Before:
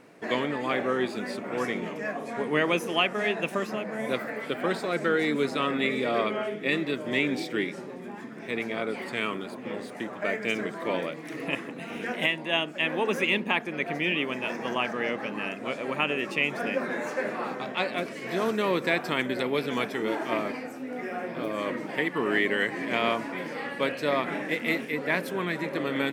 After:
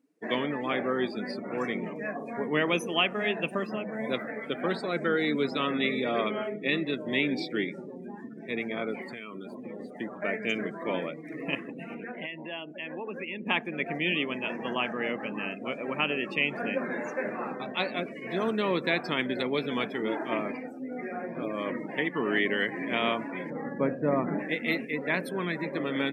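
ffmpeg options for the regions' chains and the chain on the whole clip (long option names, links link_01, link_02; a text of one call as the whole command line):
ffmpeg -i in.wav -filter_complex "[0:a]asettb=1/sr,asplit=3[link_01][link_02][link_03];[link_01]atrim=end=9.014[link_04];[link_02]atrim=start=9.01:end=9.8,asetpts=PTS-STARTPTS,afade=type=in:duration=0.004:curve=qsin,afade=type=out:start_time=0.786:duration=0.004:curve=qsin,highshelf=frequency=7900:gain=6.5,acompressor=threshold=-33dB:ratio=6:attack=3.2:release=140:knee=1:detection=peak[link_05];[link_03]atrim=start=9.796[link_06];[link_04][link_05]acrossfade=duration=0.004:curve1=hsin:curve2=qsin[link_07];[link_07][link_06]acrossfade=duration=0.004:curve1=qsin:curve2=hsin,asettb=1/sr,asplit=3[link_08][link_09][link_10];[link_08]atrim=end=11.944[link_11];[link_09]atrim=start=11.94:end=13.47,asetpts=PTS-STARTPTS,afade=type=in:duration=0.004:curve=qsin,afade=type=out:start_time=1.526:duration=0.004:curve=qsin,bass=frequency=250:gain=-2,treble=frequency=4000:gain=-14,acompressor=threshold=-34dB:ratio=2.5:attack=3.2:release=140:knee=1:detection=peak[link_12];[link_10]atrim=start=13.466[link_13];[link_11][link_12]acrossfade=duration=0.004:curve1=hsin:curve2=qsin[link_14];[link_14][link_13]acrossfade=duration=0.004:curve1=qsin:curve2=hsin,asettb=1/sr,asplit=3[link_15][link_16][link_17];[link_15]atrim=end=23.504[link_18];[link_16]atrim=start=23.5:end=24.39,asetpts=PTS-STARTPTS,afade=type=in:duration=0.004:curve=qsin,afade=type=out:start_time=0.886:duration=0.004:curve=qsin,lowpass=1400,lowshelf=frequency=260:gain=11,aeval=exprs='sgn(val(0))*max(abs(val(0))-0.00211,0)':channel_layout=same[link_19];[link_17]atrim=start=24.386[link_20];[link_18][link_19]acrossfade=duration=0.004:curve1=hsin:curve2=qsin[link_21];[link_21][link_20]acrossfade=duration=0.004:curve1=qsin:curve2=hsin,afftdn=noise_reduction=27:noise_floor=-39,highpass=160,bass=frequency=250:gain=6,treble=frequency=4000:gain=11,volume=-2.5dB" out.wav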